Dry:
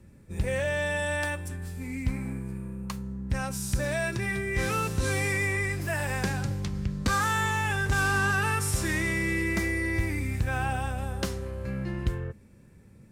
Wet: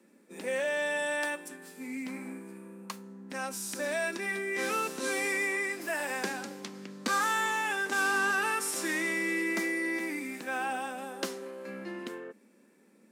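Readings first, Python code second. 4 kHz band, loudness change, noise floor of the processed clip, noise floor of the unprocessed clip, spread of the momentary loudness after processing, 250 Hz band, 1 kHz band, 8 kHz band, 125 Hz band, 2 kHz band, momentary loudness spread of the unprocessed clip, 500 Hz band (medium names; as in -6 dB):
-1.5 dB, -2.5 dB, -62 dBFS, -53 dBFS, 15 LU, -4.5 dB, -1.5 dB, -1.5 dB, under -20 dB, -1.5 dB, 11 LU, -1.5 dB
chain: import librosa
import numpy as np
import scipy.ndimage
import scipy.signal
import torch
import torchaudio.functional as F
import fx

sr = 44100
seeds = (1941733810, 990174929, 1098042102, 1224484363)

y = scipy.signal.sosfilt(scipy.signal.butter(8, 220.0, 'highpass', fs=sr, output='sos'), x)
y = y * 10.0 ** (-1.5 / 20.0)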